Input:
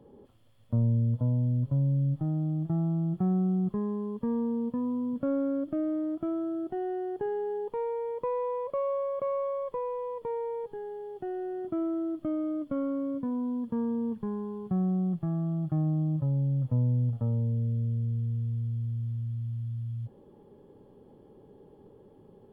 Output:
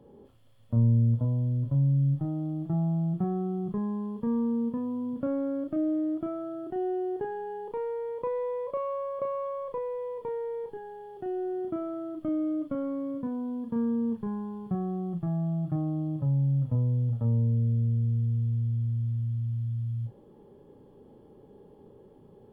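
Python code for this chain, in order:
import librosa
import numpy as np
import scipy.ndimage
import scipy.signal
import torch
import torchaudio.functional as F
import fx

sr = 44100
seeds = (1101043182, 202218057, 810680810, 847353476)

y = fx.doubler(x, sr, ms=35.0, db=-6.5)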